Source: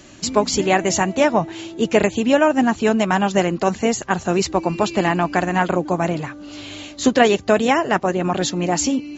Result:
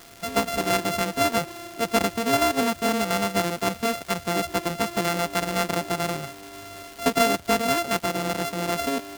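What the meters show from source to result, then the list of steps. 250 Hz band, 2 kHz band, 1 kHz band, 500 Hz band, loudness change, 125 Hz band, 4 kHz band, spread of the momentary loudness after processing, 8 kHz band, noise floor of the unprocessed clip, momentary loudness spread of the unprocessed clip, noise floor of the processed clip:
-8.5 dB, -5.0 dB, -5.0 dB, -7.5 dB, -6.0 dB, -7.5 dB, -2.0 dB, 7 LU, n/a, -38 dBFS, 7 LU, -43 dBFS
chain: sample sorter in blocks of 64 samples; crackle 580/s -27 dBFS; gain -6.5 dB

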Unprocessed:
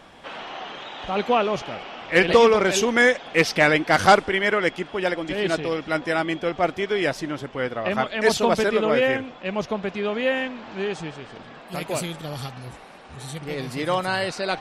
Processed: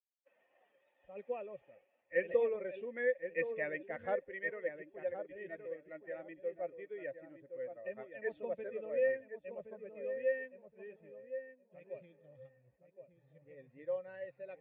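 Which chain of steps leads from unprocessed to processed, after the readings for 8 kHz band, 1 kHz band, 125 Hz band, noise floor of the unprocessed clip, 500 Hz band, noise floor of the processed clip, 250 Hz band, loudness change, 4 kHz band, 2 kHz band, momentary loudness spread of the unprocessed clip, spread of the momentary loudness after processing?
under -40 dB, -28.5 dB, -29.5 dB, -44 dBFS, -15.0 dB, -77 dBFS, -26.5 dB, -18.0 dB, under -40 dB, -20.5 dB, 18 LU, 20 LU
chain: per-bin expansion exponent 1.5; HPF 57 Hz; expander -44 dBFS; vocal tract filter e; on a send: darkening echo 1.069 s, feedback 20%, low-pass 1200 Hz, level -8 dB; on the sum: gain -7 dB

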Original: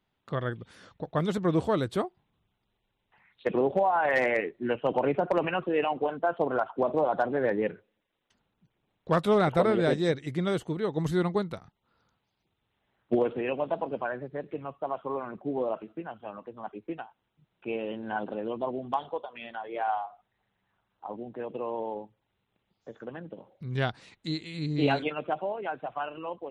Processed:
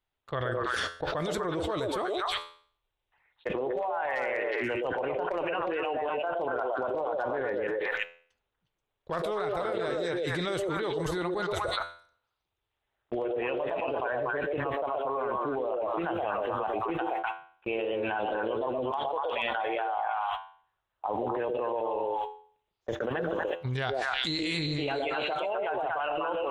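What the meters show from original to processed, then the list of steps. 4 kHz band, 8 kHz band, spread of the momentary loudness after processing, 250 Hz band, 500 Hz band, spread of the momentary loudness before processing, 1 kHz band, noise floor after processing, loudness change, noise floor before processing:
+6.0 dB, n/a, 4 LU, -4.5 dB, -1.0 dB, 17 LU, +0.5 dB, -84 dBFS, -1.5 dB, -79 dBFS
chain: bell 190 Hz -14.5 dB 1.6 oct; delay with a stepping band-pass 0.12 s, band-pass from 460 Hz, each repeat 1.4 oct, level 0 dB; gate -48 dBFS, range -37 dB; low shelf 120 Hz +6 dB; resonator 85 Hz, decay 0.48 s, harmonics all, mix 40%; fast leveller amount 100%; gain -5.5 dB

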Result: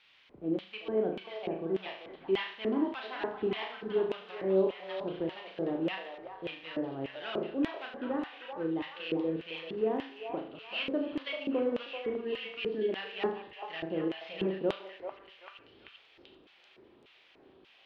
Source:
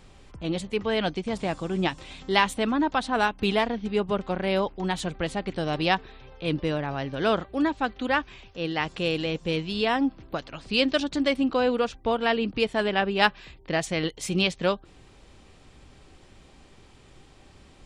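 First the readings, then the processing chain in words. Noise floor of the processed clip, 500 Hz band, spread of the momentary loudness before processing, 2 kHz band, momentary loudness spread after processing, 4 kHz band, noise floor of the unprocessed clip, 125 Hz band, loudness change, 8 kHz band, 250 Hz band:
-62 dBFS, -5.5 dB, 7 LU, -12.5 dB, 10 LU, -11.5 dB, -53 dBFS, -13.0 dB, -8.0 dB, under -30 dB, -7.0 dB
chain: CVSD 32 kbps; spectral gain 11.82–12.89, 460–1600 Hz -20 dB; requantised 8-bit, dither triangular; air absorption 330 m; flutter echo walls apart 6.3 m, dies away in 0.51 s; LFO band-pass square 1.7 Hz 380–3000 Hz; delay with a stepping band-pass 0.387 s, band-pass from 840 Hz, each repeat 0.7 oct, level -3 dB

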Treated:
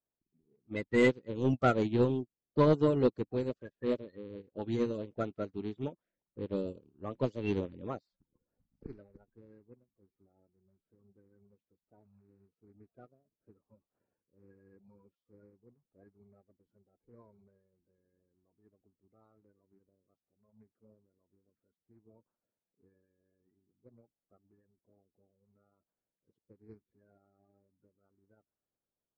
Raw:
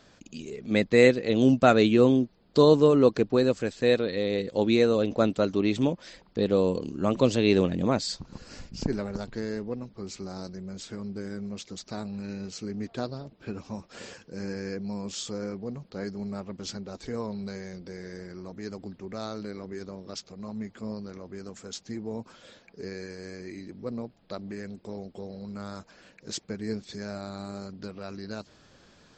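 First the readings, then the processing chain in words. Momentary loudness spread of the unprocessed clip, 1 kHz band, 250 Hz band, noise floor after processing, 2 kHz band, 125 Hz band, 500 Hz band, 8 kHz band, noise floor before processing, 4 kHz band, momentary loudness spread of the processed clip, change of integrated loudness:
20 LU, -8.0 dB, -10.0 dB, under -85 dBFS, -9.0 dB, -6.5 dB, -10.0 dB, under -20 dB, -59 dBFS, -17.0 dB, 18 LU, -5.5 dB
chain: bin magnitudes rounded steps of 30 dB; high shelf 3700 Hz -8 dB; low-pass opened by the level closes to 810 Hz, open at -17.5 dBFS; soft clip -13.5 dBFS, distortion -16 dB; upward expander 2.5:1, over -41 dBFS; gain -2.5 dB

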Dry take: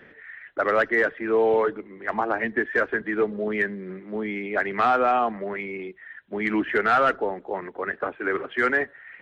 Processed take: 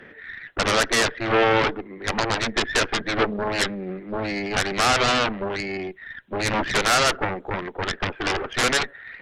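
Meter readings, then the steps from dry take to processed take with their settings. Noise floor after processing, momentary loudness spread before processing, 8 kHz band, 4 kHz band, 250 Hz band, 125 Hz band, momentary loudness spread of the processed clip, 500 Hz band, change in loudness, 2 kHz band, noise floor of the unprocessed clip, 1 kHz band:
-46 dBFS, 13 LU, n/a, +19.5 dB, +1.0 dB, +11.0 dB, 12 LU, -1.0 dB, +1.5 dB, +1.5 dB, -51 dBFS, +0.5 dB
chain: added harmonics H 7 -7 dB, 8 -11 dB, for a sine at -10.5 dBFS; gain -2 dB

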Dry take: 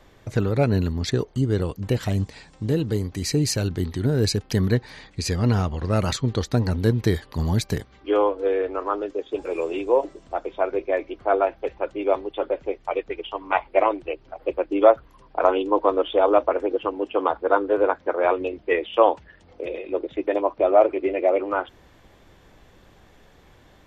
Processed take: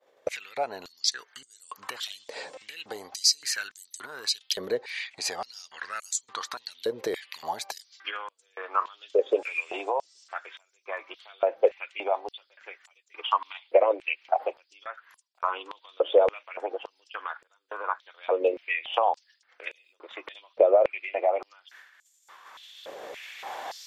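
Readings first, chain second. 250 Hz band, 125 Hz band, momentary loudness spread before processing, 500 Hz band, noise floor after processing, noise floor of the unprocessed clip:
-20.0 dB, under -35 dB, 10 LU, -6.0 dB, -69 dBFS, -54 dBFS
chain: recorder AGC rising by 5.1 dB/s; expander -40 dBFS; limiter -10 dBFS, peak gain reduction 8 dB; compressor 5:1, threshold -30 dBFS, peak gain reduction 14.5 dB; stepped high-pass 3.5 Hz 520–7300 Hz; gain +4 dB

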